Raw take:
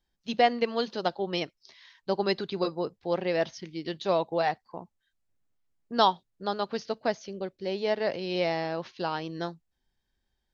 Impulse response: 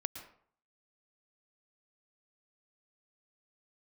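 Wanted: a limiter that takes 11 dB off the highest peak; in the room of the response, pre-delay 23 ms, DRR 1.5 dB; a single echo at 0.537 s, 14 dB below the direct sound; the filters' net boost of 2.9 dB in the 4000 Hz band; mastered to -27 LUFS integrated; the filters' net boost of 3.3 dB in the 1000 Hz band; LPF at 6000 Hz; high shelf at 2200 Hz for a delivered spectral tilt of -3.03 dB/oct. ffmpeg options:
-filter_complex "[0:a]lowpass=6k,equalizer=f=1k:t=o:g=5,highshelf=f=2.2k:g=-4,equalizer=f=4k:t=o:g=7.5,alimiter=limit=-16.5dB:level=0:latency=1,aecho=1:1:537:0.2,asplit=2[a][b];[1:a]atrim=start_sample=2205,adelay=23[c];[b][c]afir=irnorm=-1:irlink=0,volume=-1.5dB[d];[a][d]amix=inputs=2:normalize=0,volume=1.5dB"

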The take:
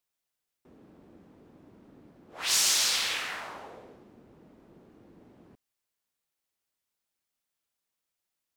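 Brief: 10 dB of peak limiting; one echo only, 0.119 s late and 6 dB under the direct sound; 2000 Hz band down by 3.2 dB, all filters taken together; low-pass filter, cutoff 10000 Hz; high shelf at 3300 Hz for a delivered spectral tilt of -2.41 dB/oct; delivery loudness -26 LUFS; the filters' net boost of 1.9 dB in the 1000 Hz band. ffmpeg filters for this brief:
-af "lowpass=10k,equalizer=f=1k:t=o:g=4,equalizer=f=2k:t=o:g=-3.5,highshelf=f=3.3k:g=-4.5,alimiter=level_in=2dB:limit=-24dB:level=0:latency=1,volume=-2dB,aecho=1:1:119:0.501,volume=8.5dB"

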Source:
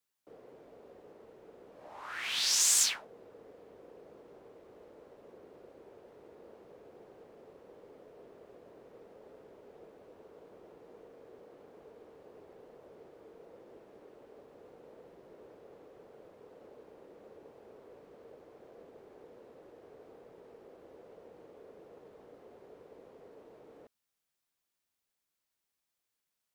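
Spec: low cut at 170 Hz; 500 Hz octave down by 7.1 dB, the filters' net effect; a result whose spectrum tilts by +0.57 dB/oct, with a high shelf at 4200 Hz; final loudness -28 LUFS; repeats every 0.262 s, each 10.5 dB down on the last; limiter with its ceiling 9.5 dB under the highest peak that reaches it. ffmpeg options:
-af "highpass=170,equalizer=f=500:t=o:g=-8.5,highshelf=f=4.2k:g=5,alimiter=limit=-17.5dB:level=0:latency=1,aecho=1:1:262|524|786:0.299|0.0896|0.0269,volume=0.5dB"

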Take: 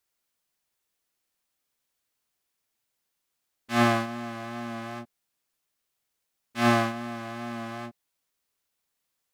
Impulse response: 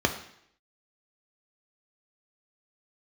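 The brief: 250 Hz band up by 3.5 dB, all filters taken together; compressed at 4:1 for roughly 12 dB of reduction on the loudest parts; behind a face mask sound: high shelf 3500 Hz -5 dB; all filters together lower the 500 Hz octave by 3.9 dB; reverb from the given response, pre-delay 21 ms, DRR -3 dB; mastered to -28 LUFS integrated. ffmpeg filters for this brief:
-filter_complex "[0:a]equalizer=f=250:t=o:g=5.5,equalizer=f=500:t=o:g=-8,acompressor=threshold=-30dB:ratio=4,asplit=2[a][b];[1:a]atrim=start_sample=2205,adelay=21[c];[b][c]afir=irnorm=-1:irlink=0,volume=-9.5dB[d];[a][d]amix=inputs=2:normalize=0,highshelf=f=3.5k:g=-5,volume=-0.5dB"

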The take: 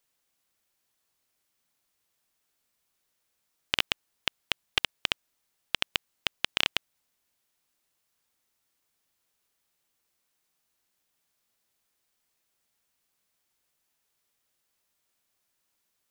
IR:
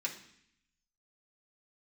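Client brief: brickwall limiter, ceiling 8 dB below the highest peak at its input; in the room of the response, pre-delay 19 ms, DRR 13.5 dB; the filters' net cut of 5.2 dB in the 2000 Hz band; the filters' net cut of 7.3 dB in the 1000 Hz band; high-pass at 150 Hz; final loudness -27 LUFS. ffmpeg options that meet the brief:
-filter_complex "[0:a]highpass=150,equalizer=f=1k:t=o:g=-8,equalizer=f=2k:t=o:g=-5.5,alimiter=limit=-15.5dB:level=0:latency=1,asplit=2[a][b];[1:a]atrim=start_sample=2205,adelay=19[c];[b][c]afir=irnorm=-1:irlink=0,volume=-15.5dB[d];[a][d]amix=inputs=2:normalize=0,volume=15dB"

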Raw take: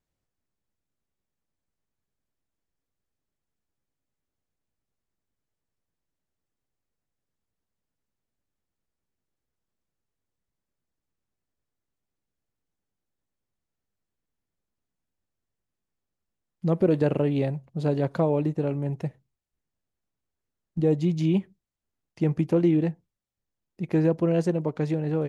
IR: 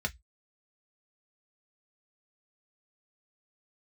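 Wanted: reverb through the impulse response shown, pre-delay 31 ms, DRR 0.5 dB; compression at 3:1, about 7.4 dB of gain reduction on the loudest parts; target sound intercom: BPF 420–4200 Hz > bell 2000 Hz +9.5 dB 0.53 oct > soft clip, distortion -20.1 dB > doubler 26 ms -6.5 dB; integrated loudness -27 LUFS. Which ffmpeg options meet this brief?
-filter_complex "[0:a]acompressor=threshold=-27dB:ratio=3,asplit=2[a][b];[1:a]atrim=start_sample=2205,adelay=31[c];[b][c]afir=irnorm=-1:irlink=0,volume=-5.5dB[d];[a][d]amix=inputs=2:normalize=0,highpass=420,lowpass=4.2k,equalizer=f=2k:t=o:w=0.53:g=9.5,asoftclip=threshold=-23dB,asplit=2[e][f];[f]adelay=26,volume=-6.5dB[g];[e][g]amix=inputs=2:normalize=0,volume=8dB"

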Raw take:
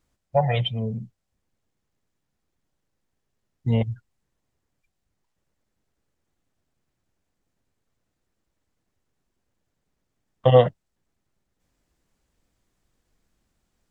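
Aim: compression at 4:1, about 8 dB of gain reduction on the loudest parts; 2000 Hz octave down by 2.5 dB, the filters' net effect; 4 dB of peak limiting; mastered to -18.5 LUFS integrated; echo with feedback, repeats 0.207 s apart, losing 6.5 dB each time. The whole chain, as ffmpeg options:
-af "equalizer=f=2k:t=o:g=-3,acompressor=threshold=-18dB:ratio=4,alimiter=limit=-12dB:level=0:latency=1,aecho=1:1:207|414|621|828|1035|1242:0.473|0.222|0.105|0.0491|0.0231|0.0109,volume=10dB"

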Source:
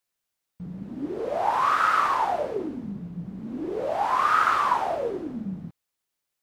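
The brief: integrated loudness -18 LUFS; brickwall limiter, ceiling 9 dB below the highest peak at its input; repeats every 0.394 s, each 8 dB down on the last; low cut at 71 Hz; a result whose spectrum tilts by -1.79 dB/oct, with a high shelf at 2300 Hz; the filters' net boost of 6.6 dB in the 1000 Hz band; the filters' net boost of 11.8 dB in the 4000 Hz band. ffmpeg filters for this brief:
-af "highpass=71,equalizer=f=1k:t=o:g=6,highshelf=f=2.3k:g=7.5,equalizer=f=4k:t=o:g=8,alimiter=limit=-11dB:level=0:latency=1,aecho=1:1:394|788|1182|1576|1970:0.398|0.159|0.0637|0.0255|0.0102,volume=3dB"

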